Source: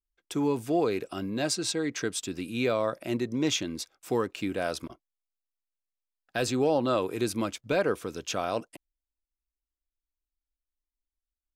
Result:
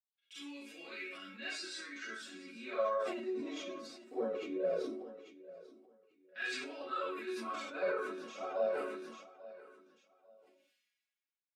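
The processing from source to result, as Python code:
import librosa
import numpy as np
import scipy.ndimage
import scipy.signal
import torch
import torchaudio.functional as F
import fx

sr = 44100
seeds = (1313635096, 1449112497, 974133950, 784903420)

p1 = scipy.signal.sosfilt(scipy.signal.butter(2, 120.0, 'highpass', fs=sr, output='sos'), x)
p2 = fx.peak_eq(p1, sr, hz=830.0, db=-11.5, octaves=0.8)
p3 = fx.hum_notches(p2, sr, base_hz=60, count=9)
p4 = fx.resonator_bank(p3, sr, root=54, chord='minor', decay_s=0.25)
p5 = fx.filter_lfo_bandpass(p4, sr, shape='saw_down', hz=0.2, low_hz=400.0, high_hz=3200.0, q=1.9)
p6 = fx.rev_schroeder(p5, sr, rt60_s=0.4, comb_ms=31, drr_db=-9.5)
p7 = fx.env_flanger(p6, sr, rest_ms=4.2, full_db=-28.0)
p8 = p7 + fx.echo_feedback(p7, sr, ms=842, feedback_pct=27, wet_db=-18, dry=0)
p9 = fx.sustainer(p8, sr, db_per_s=40.0)
y = F.gain(torch.from_numpy(p9), 8.5).numpy()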